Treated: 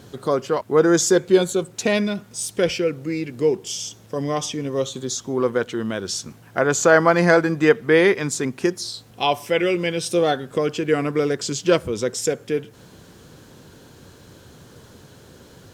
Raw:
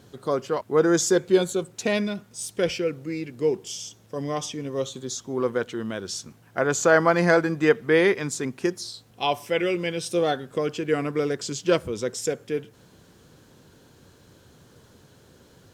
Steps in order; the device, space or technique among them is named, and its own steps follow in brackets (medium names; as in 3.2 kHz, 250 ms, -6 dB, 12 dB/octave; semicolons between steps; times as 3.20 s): parallel compression (in parallel at -3.5 dB: compression, threshold -35 dBFS, peak gain reduction 21 dB); on the sum: trim +3 dB